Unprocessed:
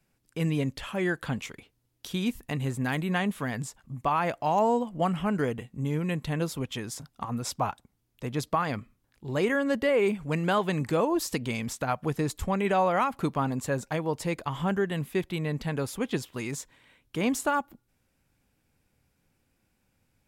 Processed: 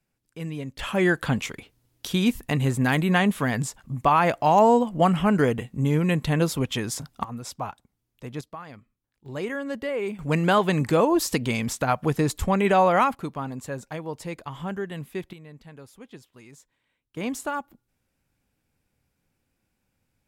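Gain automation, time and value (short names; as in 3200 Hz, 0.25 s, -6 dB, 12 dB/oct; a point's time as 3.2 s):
-5.5 dB
from 0.79 s +7 dB
from 7.24 s -3.5 dB
from 8.41 s -12.5 dB
from 9.26 s -4.5 dB
from 10.19 s +5.5 dB
from 13.15 s -4 dB
from 15.33 s -15 dB
from 17.17 s -3 dB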